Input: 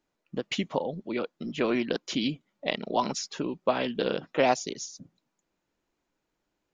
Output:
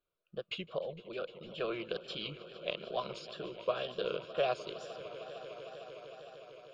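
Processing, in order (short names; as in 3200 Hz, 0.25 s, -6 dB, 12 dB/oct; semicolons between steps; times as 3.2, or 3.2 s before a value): fixed phaser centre 1300 Hz, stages 8; swelling echo 0.152 s, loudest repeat 5, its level -18 dB; wow and flutter 78 cents; gain -6 dB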